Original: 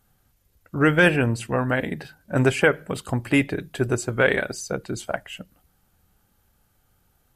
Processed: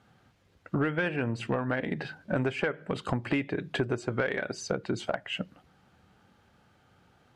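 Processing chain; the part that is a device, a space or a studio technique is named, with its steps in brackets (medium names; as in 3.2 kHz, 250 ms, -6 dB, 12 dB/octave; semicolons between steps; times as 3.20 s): AM radio (band-pass 120–3700 Hz; compression 10:1, threshold -32 dBFS, peak gain reduction 20.5 dB; saturation -21.5 dBFS, distortion -23 dB); trim +7 dB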